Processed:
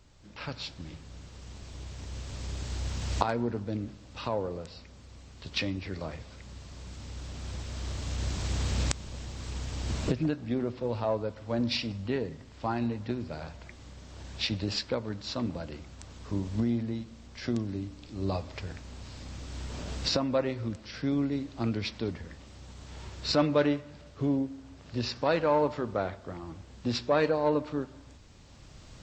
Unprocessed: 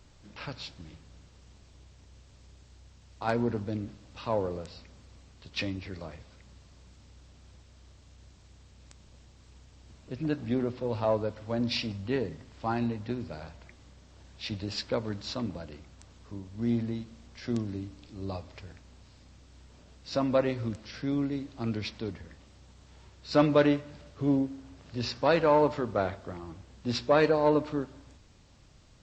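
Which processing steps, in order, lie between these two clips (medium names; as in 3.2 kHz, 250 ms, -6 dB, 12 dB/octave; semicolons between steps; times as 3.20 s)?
recorder AGC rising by 8.3 dB/s; trim -2.5 dB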